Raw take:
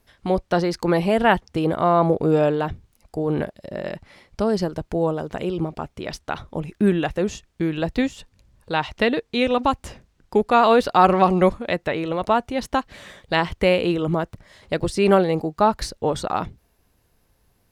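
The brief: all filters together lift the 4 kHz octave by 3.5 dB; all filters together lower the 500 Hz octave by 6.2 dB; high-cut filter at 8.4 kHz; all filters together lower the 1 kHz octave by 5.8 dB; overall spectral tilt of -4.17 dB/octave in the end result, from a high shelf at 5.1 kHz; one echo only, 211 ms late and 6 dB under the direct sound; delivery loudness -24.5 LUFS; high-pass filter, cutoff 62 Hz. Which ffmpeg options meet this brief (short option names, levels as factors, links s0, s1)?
-af "highpass=62,lowpass=8400,equalizer=f=500:t=o:g=-6.5,equalizer=f=1000:t=o:g=-5.5,equalizer=f=4000:t=o:g=6.5,highshelf=f=5100:g=-3.5,aecho=1:1:211:0.501"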